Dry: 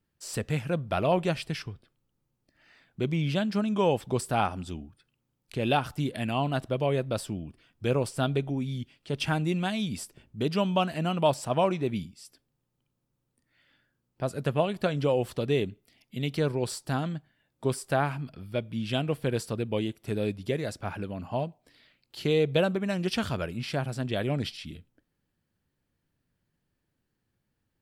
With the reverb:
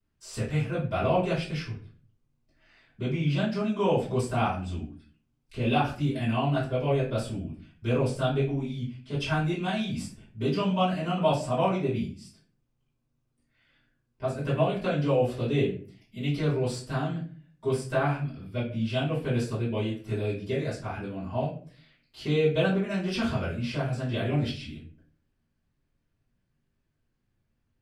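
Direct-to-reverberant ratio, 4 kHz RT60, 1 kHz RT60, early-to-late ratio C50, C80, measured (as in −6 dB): −12.0 dB, 0.30 s, 0.35 s, 6.5 dB, 12.0 dB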